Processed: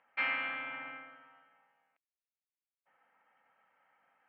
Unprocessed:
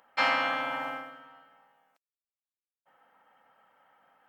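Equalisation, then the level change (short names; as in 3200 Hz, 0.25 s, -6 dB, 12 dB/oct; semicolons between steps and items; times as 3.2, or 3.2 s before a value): dynamic EQ 760 Hz, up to -7 dB, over -43 dBFS, Q 0.86; ladder low-pass 2700 Hz, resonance 55%; 0.0 dB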